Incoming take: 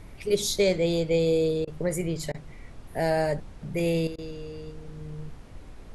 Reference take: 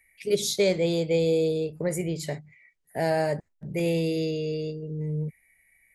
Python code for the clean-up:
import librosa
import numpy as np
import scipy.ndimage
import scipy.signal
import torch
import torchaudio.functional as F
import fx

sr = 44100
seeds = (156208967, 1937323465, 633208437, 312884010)

y = fx.fix_interpolate(x, sr, at_s=(1.65, 2.32, 4.16), length_ms=22.0)
y = fx.noise_reduce(y, sr, print_start_s=5.37, print_end_s=5.87, reduce_db=20.0)
y = fx.fix_level(y, sr, at_s=4.07, step_db=10.0)